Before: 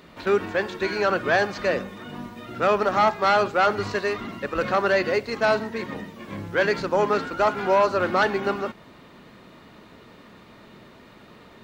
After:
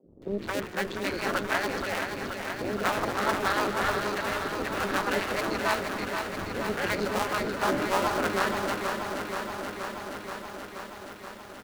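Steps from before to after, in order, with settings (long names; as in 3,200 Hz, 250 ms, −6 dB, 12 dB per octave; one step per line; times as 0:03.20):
sub-harmonics by changed cycles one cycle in 2, muted
rotating-speaker cabinet horn 6.7 Hz
three-band delay without the direct sound mids, lows, highs 40/220 ms, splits 150/530 Hz
feedback echo at a low word length 477 ms, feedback 80%, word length 9 bits, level −6 dB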